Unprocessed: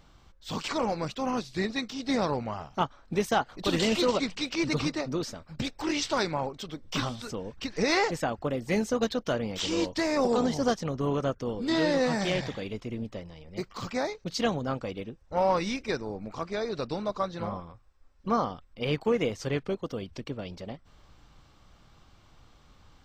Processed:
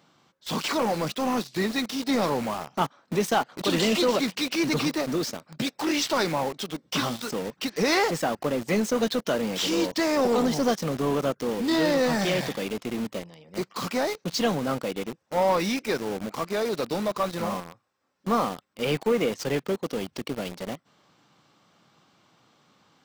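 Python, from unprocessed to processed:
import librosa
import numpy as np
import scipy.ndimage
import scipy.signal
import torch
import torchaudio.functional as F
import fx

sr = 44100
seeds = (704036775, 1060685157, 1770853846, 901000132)

p1 = scipy.signal.sosfilt(scipy.signal.butter(4, 150.0, 'highpass', fs=sr, output='sos'), x)
p2 = fx.quant_companded(p1, sr, bits=2)
y = p1 + (p2 * 10.0 ** (-7.0 / 20.0))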